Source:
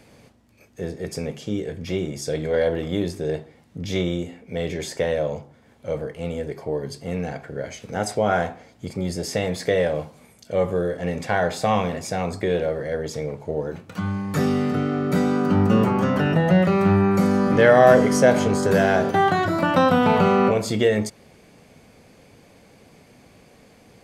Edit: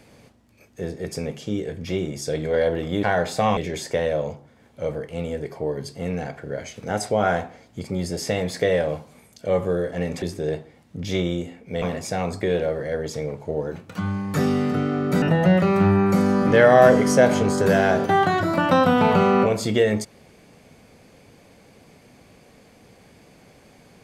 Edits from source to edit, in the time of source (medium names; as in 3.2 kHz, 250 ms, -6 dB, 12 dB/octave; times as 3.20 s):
3.03–4.63 s: swap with 11.28–11.82 s
15.22–16.27 s: delete